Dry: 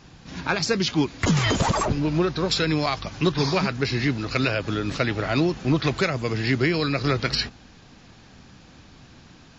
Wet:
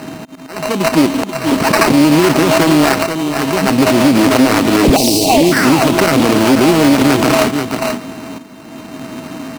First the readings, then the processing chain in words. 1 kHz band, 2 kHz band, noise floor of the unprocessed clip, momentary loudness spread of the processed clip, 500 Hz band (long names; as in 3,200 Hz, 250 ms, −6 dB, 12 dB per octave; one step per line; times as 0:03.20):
+13.5 dB, +10.0 dB, −50 dBFS, 18 LU, +13.0 dB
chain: samples sorted by size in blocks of 16 samples
high-shelf EQ 3,600 Hz −11.5 dB
in parallel at 0 dB: compressor whose output falls as the input rises −30 dBFS, ratio −0.5
on the sum: volume swells 667 ms
loudspeaker in its box 230–6,100 Hz, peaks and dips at 270 Hz +9 dB, 570 Hz −9 dB, 2,400 Hz +8 dB
pitch vibrato 6.5 Hz 8.8 cents
sound drawn into the spectrogram fall, 0:04.84–0:05.42, 530–4,100 Hz −19 dBFS
sample-rate reduction 3,400 Hz, jitter 0%
on a send: single-tap delay 484 ms −10 dB
on the sum: time-frequency box erased 0:04.96–0:05.52, 820–2,600 Hz
boost into a limiter +15 dB
highs frequency-modulated by the lows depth 0.49 ms
level −1 dB